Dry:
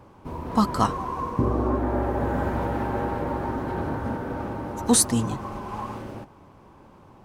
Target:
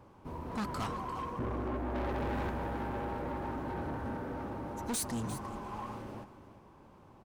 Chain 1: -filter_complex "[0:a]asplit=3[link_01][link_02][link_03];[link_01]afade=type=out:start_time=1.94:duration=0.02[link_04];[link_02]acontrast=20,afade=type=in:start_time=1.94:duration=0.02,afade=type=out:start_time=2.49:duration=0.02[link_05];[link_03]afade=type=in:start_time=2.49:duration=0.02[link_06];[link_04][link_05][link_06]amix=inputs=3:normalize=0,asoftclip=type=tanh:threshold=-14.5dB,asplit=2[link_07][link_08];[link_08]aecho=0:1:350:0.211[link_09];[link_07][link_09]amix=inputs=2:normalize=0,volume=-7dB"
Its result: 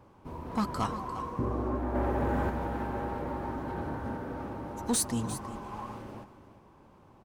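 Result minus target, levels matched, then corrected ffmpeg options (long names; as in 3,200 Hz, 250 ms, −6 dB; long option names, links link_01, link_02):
soft clipping: distortion −9 dB
-filter_complex "[0:a]asplit=3[link_01][link_02][link_03];[link_01]afade=type=out:start_time=1.94:duration=0.02[link_04];[link_02]acontrast=20,afade=type=in:start_time=1.94:duration=0.02,afade=type=out:start_time=2.49:duration=0.02[link_05];[link_03]afade=type=in:start_time=2.49:duration=0.02[link_06];[link_04][link_05][link_06]amix=inputs=3:normalize=0,asoftclip=type=tanh:threshold=-25dB,asplit=2[link_07][link_08];[link_08]aecho=0:1:350:0.211[link_09];[link_07][link_09]amix=inputs=2:normalize=0,volume=-7dB"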